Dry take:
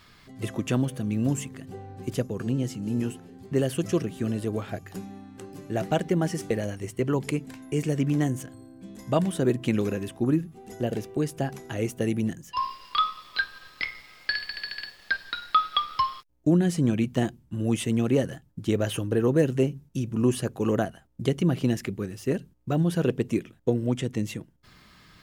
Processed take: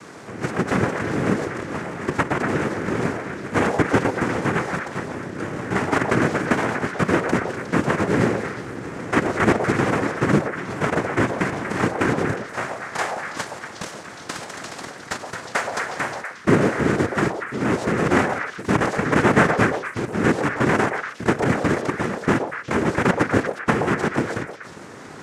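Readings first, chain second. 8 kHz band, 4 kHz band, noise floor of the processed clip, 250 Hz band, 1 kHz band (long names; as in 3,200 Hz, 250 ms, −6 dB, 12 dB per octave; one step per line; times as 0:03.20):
+4.5 dB, 0.0 dB, −39 dBFS, +4.0 dB, +8.5 dB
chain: compressor on every frequency bin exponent 0.6
high-pass filter 310 Hz 24 dB per octave
spectral tilt −4.5 dB per octave
in parallel at −9 dB: decimation without filtering 36×
on the sum: cochlear-implant simulation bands 3
on a send: echo through a band-pass that steps 120 ms, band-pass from 630 Hz, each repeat 1.4 octaves, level −1 dB
on the sum: level −3 dB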